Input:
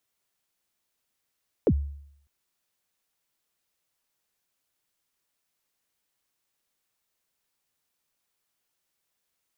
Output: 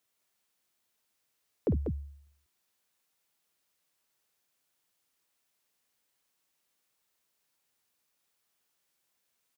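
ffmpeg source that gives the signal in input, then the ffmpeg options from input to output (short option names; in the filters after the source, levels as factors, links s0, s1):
-f lavfi -i "aevalsrc='0.178*pow(10,-3*t/0.7)*sin(2*PI*(550*0.06/log(71/550)*(exp(log(71/550)*min(t,0.06)/0.06)-1)+71*max(t-0.06,0)))':d=0.6:s=44100"
-af "lowshelf=f=66:g=-9.5,alimiter=limit=0.0794:level=0:latency=1,aecho=1:1:52.48|192.4:0.316|0.501"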